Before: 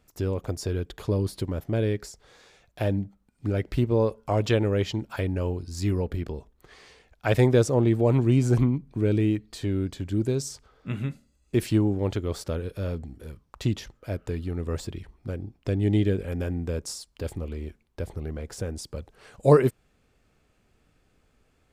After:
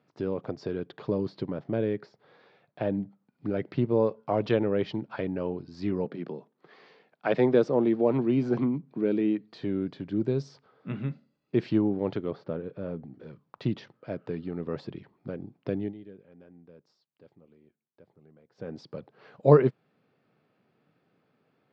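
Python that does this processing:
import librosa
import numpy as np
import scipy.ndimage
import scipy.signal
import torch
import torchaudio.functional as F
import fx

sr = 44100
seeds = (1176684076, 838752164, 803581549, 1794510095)

y = fx.air_absorb(x, sr, metres=110.0, at=(1.77, 2.93))
y = fx.highpass(y, sr, hz=160.0, slope=24, at=(6.05, 9.41))
y = fx.spacing_loss(y, sr, db_at_10k=25, at=(12.3, 13.14))
y = fx.edit(y, sr, fx.fade_down_up(start_s=15.68, length_s=3.12, db=-20.5, fade_s=0.26, curve='qsin'), tone=tone)
y = scipy.signal.sosfilt(scipy.signal.ellip(3, 1.0, 40, [140.0, 4700.0], 'bandpass', fs=sr, output='sos'), y)
y = fx.high_shelf(y, sr, hz=2900.0, db=-11.5)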